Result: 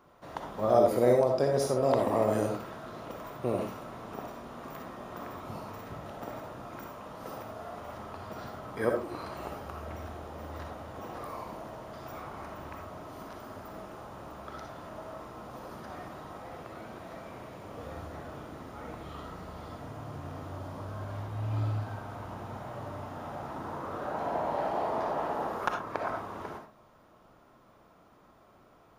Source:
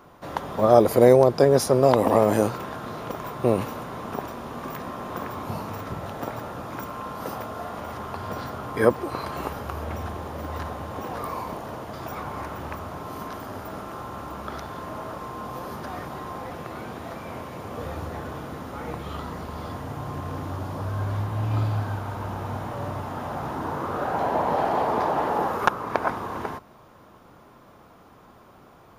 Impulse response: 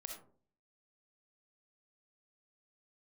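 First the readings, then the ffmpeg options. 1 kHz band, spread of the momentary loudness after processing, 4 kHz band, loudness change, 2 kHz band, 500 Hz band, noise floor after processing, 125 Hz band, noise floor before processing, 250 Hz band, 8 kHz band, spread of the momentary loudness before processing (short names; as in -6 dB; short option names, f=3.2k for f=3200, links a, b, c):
-8.5 dB, 17 LU, -8.5 dB, -8.0 dB, -8.5 dB, -7.5 dB, -60 dBFS, -8.5 dB, -51 dBFS, -8.5 dB, -9.0 dB, 17 LU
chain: -filter_complex "[0:a]equalizer=f=12k:w=6.2:g=-12.5[a];[1:a]atrim=start_sample=2205,atrim=end_sample=6174[b];[a][b]afir=irnorm=-1:irlink=0,volume=-4.5dB"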